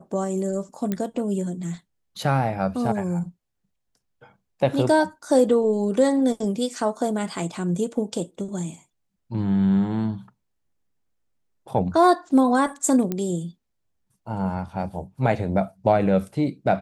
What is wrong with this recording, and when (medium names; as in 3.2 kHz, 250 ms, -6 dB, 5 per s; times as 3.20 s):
0.92 s: pop -13 dBFS
13.12 s: pop -13 dBFS